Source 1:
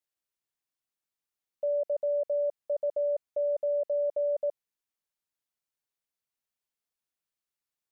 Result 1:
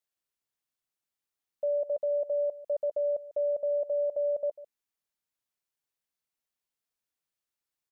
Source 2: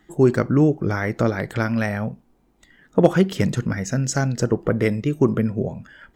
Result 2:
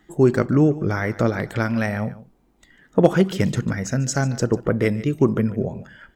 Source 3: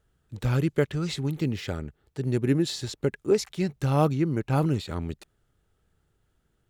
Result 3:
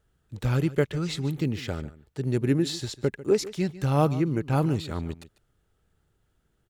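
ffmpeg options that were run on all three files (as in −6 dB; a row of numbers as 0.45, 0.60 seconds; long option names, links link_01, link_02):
-af "aecho=1:1:146:0.141"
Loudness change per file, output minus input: −0.5, 0.0, 0.0 LU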